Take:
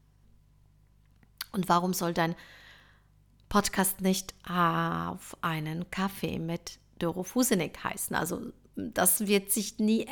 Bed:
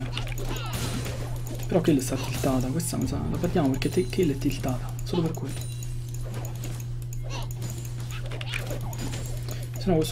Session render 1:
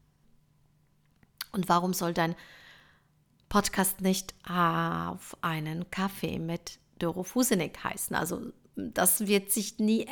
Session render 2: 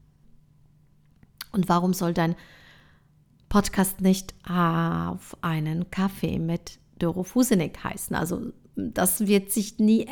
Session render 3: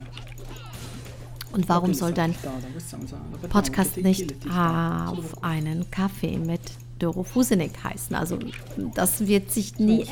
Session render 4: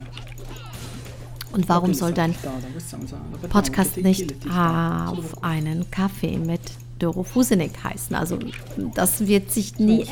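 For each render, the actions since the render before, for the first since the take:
de-hum 50 Hz, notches 2
low shelf 360 Hz +9.5 dB
add bed -8 dB
gain +2.5 dB

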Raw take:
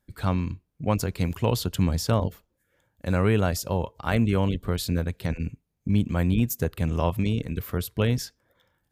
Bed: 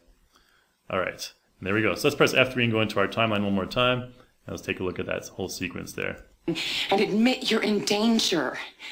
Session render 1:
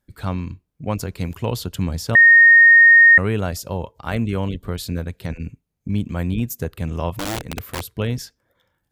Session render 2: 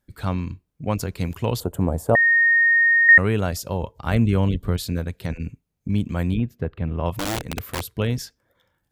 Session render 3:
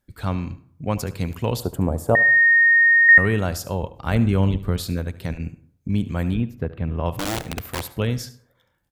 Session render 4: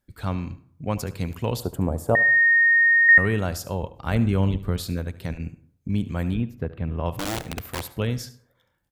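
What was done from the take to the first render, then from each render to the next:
2.15–3.18 bleep 1850 Hz -6 dBFS; 7.17–7.98 wrapped overs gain 20.5 dB
1.6–3.09 EQ curve 190 Hz 0 dB, 500 Hz +9 dB, 720 Hz +11 dB, 2500 Hz -13 dB, 5200 Hz -21 dB, 7900 Hz -2 dB; 3.82–4.77 low shelf 230 Hz +6 dB; 6.37–7.06 air absorption 410 m
echo 73 ms -16.5 dB; plate-style reverb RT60 0.58 s, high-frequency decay 0.45×, pre-delay 85 ms, DRR 19.5 dB
gain -2.5 dB

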